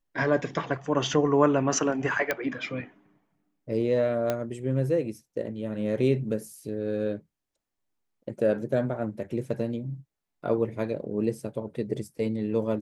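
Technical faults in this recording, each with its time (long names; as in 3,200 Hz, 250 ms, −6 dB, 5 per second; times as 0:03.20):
0:02.31: click −11 dBFS
0:04.30: click −13 dBFS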